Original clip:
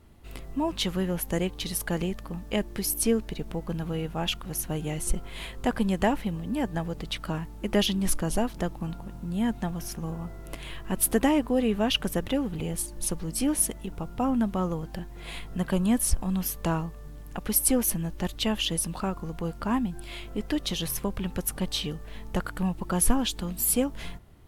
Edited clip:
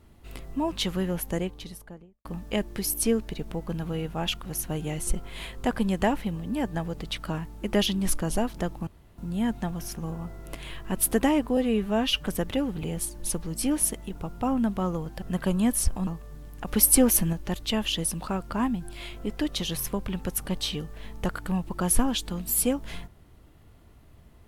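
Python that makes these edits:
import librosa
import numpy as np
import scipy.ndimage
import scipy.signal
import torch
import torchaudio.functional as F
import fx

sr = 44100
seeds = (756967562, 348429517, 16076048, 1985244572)

y = fx.studio_fade_out(x, sr, start_s=1.1, length_s=1.15)
y = fx.edit(y, sr, fx.room_tone_fill(start_s=8.87, length_s=0.31),
    fx.stretch_span(start_s=11.57, length_s=0.46, factor=1.5),
    fx.cut(start_s=14.99, length_s=0.49),
    fx.cut(start_s=16.33, length_s=0.47),
    fx.clip_gain(start_s=17.4, length_s=0.66, db=4.5),
    fx.cut(start_s=19.14, length_s=0.38), tone=tone)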